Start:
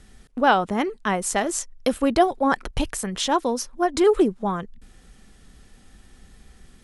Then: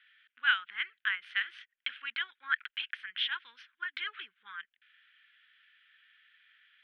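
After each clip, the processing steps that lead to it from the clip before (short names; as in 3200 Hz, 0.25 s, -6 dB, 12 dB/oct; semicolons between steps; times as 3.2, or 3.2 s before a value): elliptic band-pass 1500–3300 Hz, stop band 50 dB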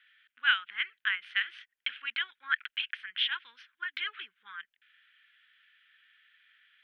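dynamic EQ 2700 Hz, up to +4 dB, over -43 dBFS, Q 1.6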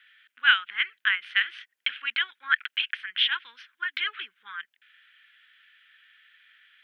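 HPF 190 Hz; gain +6 dB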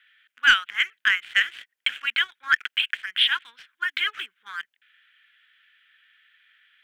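sample leveller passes 1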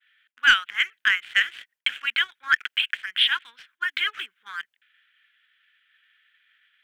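expander -56 dBFS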